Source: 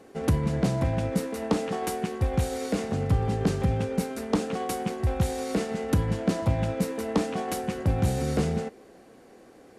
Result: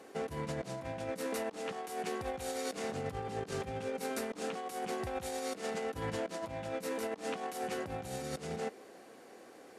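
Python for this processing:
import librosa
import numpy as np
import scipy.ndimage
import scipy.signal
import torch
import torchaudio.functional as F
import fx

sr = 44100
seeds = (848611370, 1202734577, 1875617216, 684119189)

y = fx.highpass(x, sr, hz=490.0, slope=6)
y = fx.over_compress(y, sr, threshold_db=-36.0, ratio=-0.5)
y = y * 10.0 ** (-2.0 / 20.0)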